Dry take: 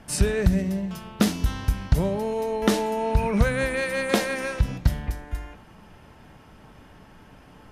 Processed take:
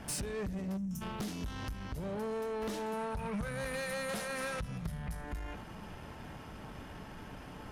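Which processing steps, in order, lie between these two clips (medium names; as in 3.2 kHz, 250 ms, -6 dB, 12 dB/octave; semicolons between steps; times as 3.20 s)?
compression 10:1, threshold -32 dBFS, peak gain reduction 20 dB; valve stage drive 37 dB, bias 0.35; 0.77–1.02 s: time-frequency box 310–5300 Hz -19 dB; 2.93–5.24 s: graphic EQ with 31 bands 160 Hz +10 dB, 315 Hz -12 dB, 1.25 kHz +5 dB, 10 kHz +9 dB; trim +3.5 dB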